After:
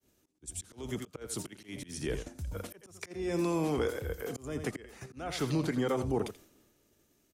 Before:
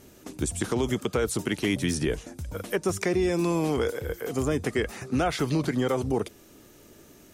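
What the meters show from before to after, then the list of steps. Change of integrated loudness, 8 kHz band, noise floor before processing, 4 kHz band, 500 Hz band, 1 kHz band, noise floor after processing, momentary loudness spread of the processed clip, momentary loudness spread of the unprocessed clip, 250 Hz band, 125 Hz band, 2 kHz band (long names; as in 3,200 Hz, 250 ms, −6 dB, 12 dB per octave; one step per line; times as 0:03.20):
−7.5 dB, −7.5 dB, −53 dBFS, −8.5 dB, −8.0 dB, −8.0 dB, −71 dBFS, 13 LU, 7 LU, −8.0 dB, −7.5 dB, −10.0 dB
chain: on a send: single-tap delay 85 ms −12 dB
on the sum: volume swells 319 ms
in parallel at 0 dB: output level in coarse steps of 20 dB
on the sum: floating-point word with a short mantissa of 8 bits
downward expander −44 dBFS
multiband upward and downward expander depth 40%
level −7 dB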